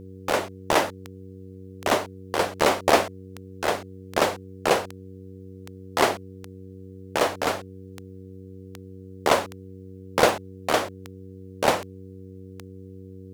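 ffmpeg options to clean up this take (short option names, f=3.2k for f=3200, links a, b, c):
-af "adeclick=t=4,bandreject=f=94.8:t=h:w=4,bandreject=f=189.6:t=h:w=4,bandreject=f=284.4:t=h:w=4,bandreject=f=379.2:t=h:w=4,bandreject=f=474:t=h:w=4"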